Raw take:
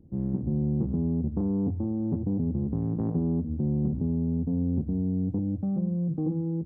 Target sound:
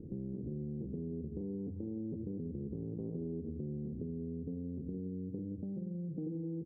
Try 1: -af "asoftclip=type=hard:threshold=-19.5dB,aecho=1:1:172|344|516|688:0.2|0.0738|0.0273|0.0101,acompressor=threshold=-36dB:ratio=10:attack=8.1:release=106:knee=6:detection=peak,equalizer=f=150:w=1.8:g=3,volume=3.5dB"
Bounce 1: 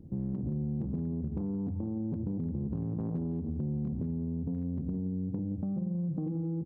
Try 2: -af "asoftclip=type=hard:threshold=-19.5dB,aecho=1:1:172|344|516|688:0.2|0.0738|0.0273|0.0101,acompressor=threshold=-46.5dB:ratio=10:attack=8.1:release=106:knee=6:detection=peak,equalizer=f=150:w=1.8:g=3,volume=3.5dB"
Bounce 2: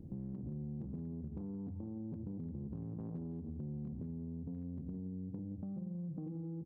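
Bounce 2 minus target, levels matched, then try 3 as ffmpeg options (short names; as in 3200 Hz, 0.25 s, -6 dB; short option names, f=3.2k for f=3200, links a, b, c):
500 Hz band -6.0 dB
-af "asoftclip=type=hard:threshold=-19.5dB,aecho=1:1:172|344|516|688:0.2|0.0738|0.0273|0.0101,acompressor=threshold=-46.5dB:ratio=10:attack=8.1:release=106:knee=6:detection=peak,lowpass=f=430:t=q:w=3.5,equalizer=f=150:w=1.8:g=3,volume=3.5dB"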